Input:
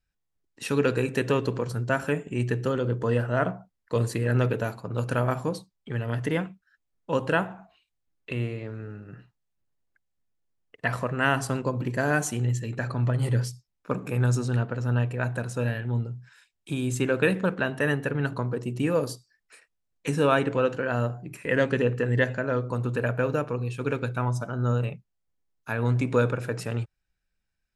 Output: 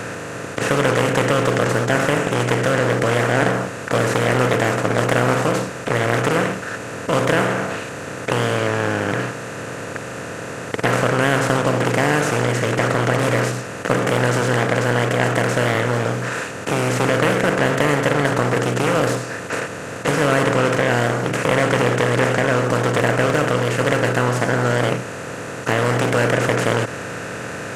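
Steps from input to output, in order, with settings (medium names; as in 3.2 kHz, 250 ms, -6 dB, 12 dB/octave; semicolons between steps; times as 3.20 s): spectral levelling over time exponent 0.2; loudspeaker Doppler distortion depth 0.42 ms; trim -2 dB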